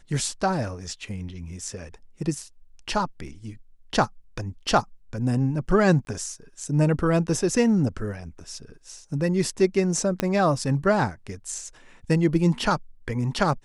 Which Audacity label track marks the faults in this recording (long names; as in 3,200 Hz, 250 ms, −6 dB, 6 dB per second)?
6.050000	6.070000	drop-out 20 ms
10.200000	10.200000	click −9 dBFS